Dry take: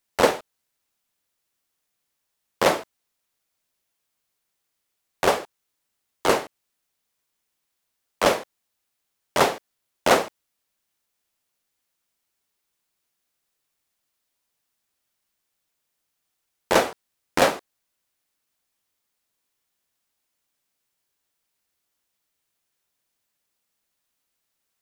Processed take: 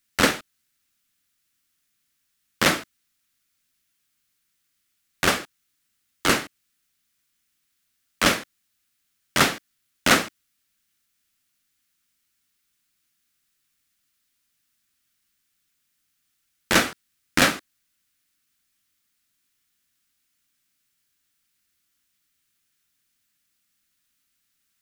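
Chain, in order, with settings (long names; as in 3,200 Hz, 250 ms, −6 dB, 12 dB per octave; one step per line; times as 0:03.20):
flat-topped bell 630 Hz −12 dB
level +5 dB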